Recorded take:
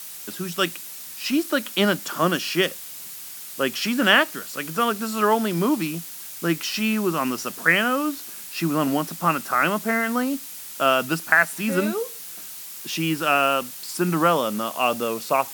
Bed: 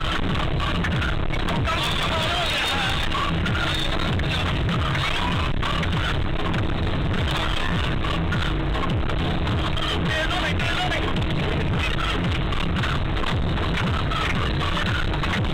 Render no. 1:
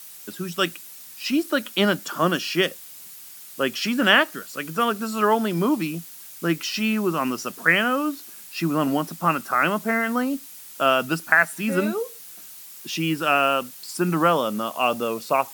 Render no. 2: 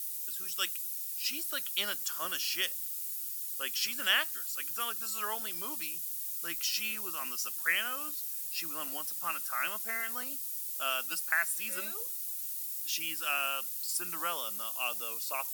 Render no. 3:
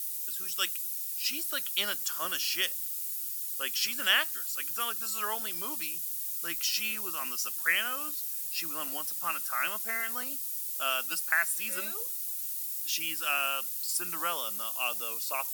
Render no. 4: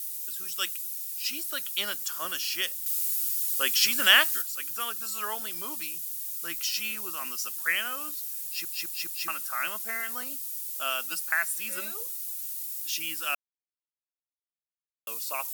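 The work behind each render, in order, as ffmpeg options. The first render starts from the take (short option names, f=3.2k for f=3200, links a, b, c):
-af "afftdn=nr=6:nf=-38"
-af "aderivative"
-af "volume=2.5dB"
-filter_complex "[0:a]asettb=1/sr,asplit=3[a][b][c];[a]atrim=end=2.864[d];[b]atrim=start=2.86:end=4.42,asetpts=PTS-STARTPTS,afade=t=in:d=0.004:c=qsin,afade=t=out:st=1.556:d=0.004:c=qsin,acontrast=87[e];[c]atrim=start=4.416[f];[d][e]acrossfade=d=0.004:c1=hsin:c2=qsin[g];[g][f]acrossfade=d=0.004:c1=qsin:c2=hsin,asplit=7[h][i][j][k][l][m][n];[h]atrim=end=8.652[o];[i]atrim=start=8.438:end=8.652[p];[j]atrim=start=8.438:end=8.652[q];[k]atrim=start=8.438:end=8.652[r];[l]atrim=start=9.278:end=13.35,asetpts=PTS-STARTPTS,afade=t=out:st=4.068:d=0.004:c=hsin[s];[m]atrim=start=13.35:end=15.07,asetpts=PTS-STARTPTS,volume=0[t];[n]atrim=start=15.07,asetpts=PTS-STARTPTS,afade=t=in:d=0.004:c=hsin[u];[o][p]acrossfade=d=0.004:c1=hsin:c2=hsin[v];[v][q]acrossfade=d=0.004:c1=hsin:c2=hsin[w];[w][r]acrossfade=d=0.004:c1=hsin:c2=hsin[x];[s][t][u]concat=n=3:v=0:a=1[y];[x][y]acrossfade=d=0.004:c1=hsin:c2=hsin"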